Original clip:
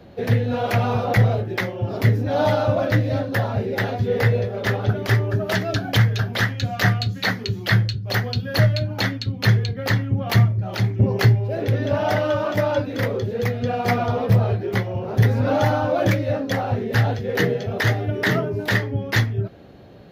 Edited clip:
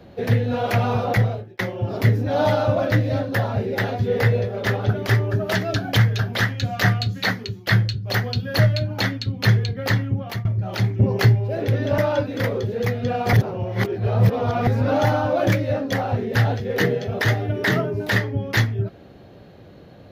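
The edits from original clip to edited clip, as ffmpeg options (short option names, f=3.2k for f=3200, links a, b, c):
-filter_complex "[0:a]asplit=7[a][b][c][d][e][f][g];[a]atrim=end=1.59,asetpts=PTS-STARTPTS,afade=t=out:st=1.08:d=0.51[h];[b]atrim=start=1.59:end=7.67,asetpts=PTS-STARTPTS,afade=t=in:d=0.004:c=hsin,afade=t=out:st=5.72:d=0.36:silence=0.16788[i];[c]atrim=start=7.67:end=10.45,asetpts=PTS-STARTPTS,afade=t=in:d=0.004:c=hsin:silence=0.16788,afade=t=out:st=2.4:d=0.38:silence=0.0630957[j];[d]atrim=start=10.45:end=11.982,asetpts=PTS-STARTPTS,afade=t=in:d=0.004:c=hsin:silence=0.0630957[k];[e]atrim=start=12.568:end=13.922[l];[f]atrim=start=13.918:end=15.262,asetpts=PTS-STARTPTS,areverse[m];[g]atrim=start=15.258[n];[h][i][j][k]concat=n=4:v=0:a=1[o];[o][l]acrossfade=d=0.004:c1=hsin:c2=hsin[p];[p][m]acrossfade=d=0.004:c1=hsin:c2=hsin[q];[q][n]acrossfade=d=0.004:c1=hsin:c2=hsin"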